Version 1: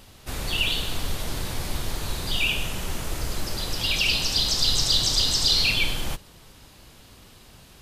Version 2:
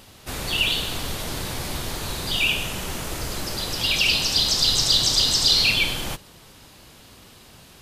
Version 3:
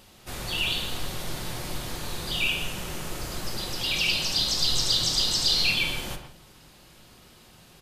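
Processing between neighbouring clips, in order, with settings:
low shelf 62 Hz -10 dB; gain +3 dB
speakerphone echo 0.12 s, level -9 dB; shoebox room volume 570 m³, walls furnished, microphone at 0.94 m; gain -6 dB

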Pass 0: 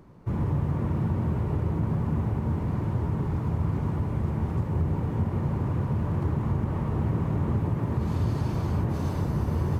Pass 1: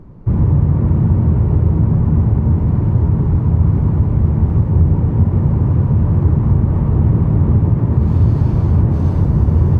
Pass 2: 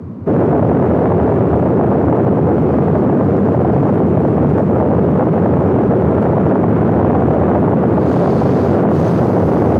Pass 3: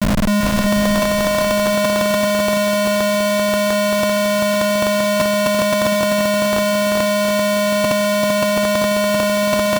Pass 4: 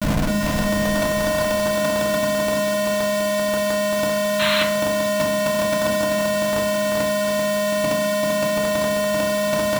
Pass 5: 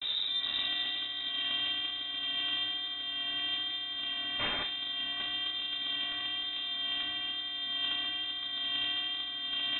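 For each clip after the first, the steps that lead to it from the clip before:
tilt -3 dB/oct; gain +4.5 dB
sine folder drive 15 dB, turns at -1 dBFS; frequency shift +76 Hz; gain -8 dB
vocoder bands 4, square 206 Hz; Schmitt trigger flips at -24.5 dBFS; bouncing-ball echo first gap 0.39 s, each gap 0.85×, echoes 5; gain -2 dB
painted sound noise, 4.39–4.64, 910–4300 Hz -18 dBFS; FDN reverb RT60 0.6 s, low-frequency decay 1.5×, high-frequency decay 0.6×, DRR 0.5 dB; gain -5.5 dB
flange 1.1 Hz, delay 7.5 ms, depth 9.1 ms, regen +79%; rotary speaker horn 1.1 Hz; inverted band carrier 3800 Hz; gain -7.5 dB

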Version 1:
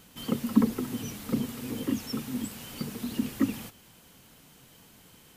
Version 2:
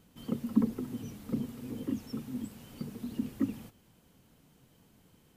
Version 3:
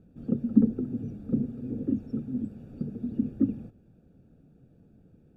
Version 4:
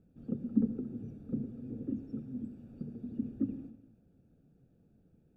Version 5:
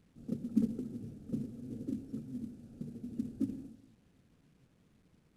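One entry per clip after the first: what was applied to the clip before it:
tilt shelf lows +5 dB, about 770 Hz; gain -8.5 dB
running mean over 43 samples; gain +7 dB
reverb RT60 1.0 s, pre-delay 70 ms, DRR 11 dB; gain -8.5 dB
CVSD 64 kbps; gain -1.5 dB

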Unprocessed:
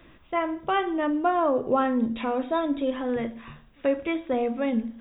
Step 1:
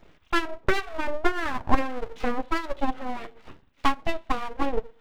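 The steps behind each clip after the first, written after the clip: full-wave rectifier; harmonic tremolo 1.7 Hz, depth 50%, crossover 1000 Hz; transient shaper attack +11 dB, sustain -6 dB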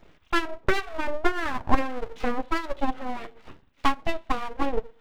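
nothing audible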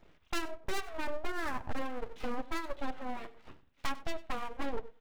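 tracing distortion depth 0.3 ms; overloaded stage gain 19.5 dB; echo 96 ms -19 dB; gain -7 dB

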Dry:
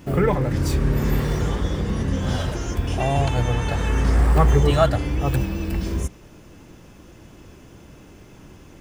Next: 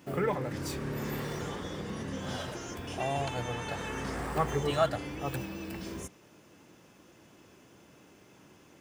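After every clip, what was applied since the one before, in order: HPF 120 Hz 12 dB/oct; low shelf 290 Hz -6.5 dB; gain -7.5 dB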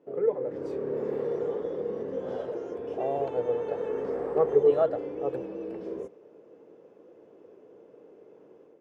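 AGC gain up to 8 dB; band-pass 460 Hz, Q 5.5; gain +7 dB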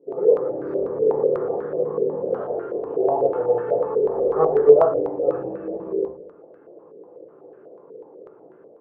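shoebox room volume 58 m³, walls mixed, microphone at 0.85 m; stepped low-pass 8.1 Hz 450–1500 Hz; gain -1.5 dB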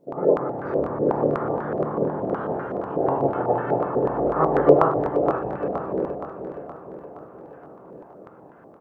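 spectral limiter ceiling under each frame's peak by 20 dB; on a send: feedback echo 0.47 s, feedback 57%, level -9.5 dB; on the sum: gain -2 dB

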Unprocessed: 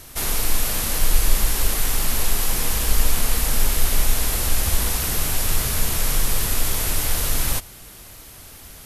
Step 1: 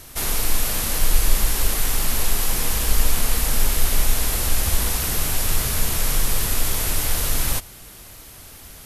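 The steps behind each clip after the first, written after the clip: nothing audible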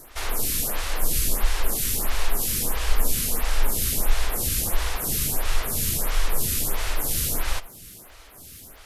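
crackle 88/s -37 dBFS; reverb RT60 0.50 s, pre-delay 72 ms, DRR 20 dB; photocell phaser 1.5 Hz

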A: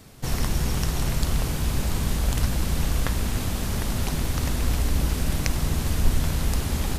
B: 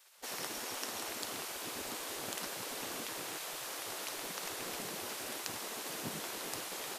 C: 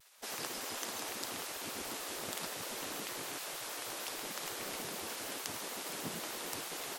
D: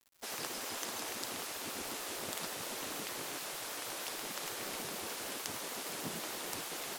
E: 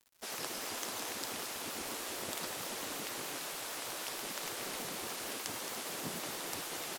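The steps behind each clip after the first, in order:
spectral gate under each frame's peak -20 dB weak; de-hum 69.24 Hz, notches 31; gain -7 dB
shaped vibrato square 6.5 Hz, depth 160 cents
on a send: split-band echo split 520 Hz, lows 0.426 s, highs 0.291 s, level -13 dB; on the sum: bit-crush 9-bit
echo 0.22 s -9.5 dB; shaped vibrato saw up 4.5 Hz, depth 100 cents

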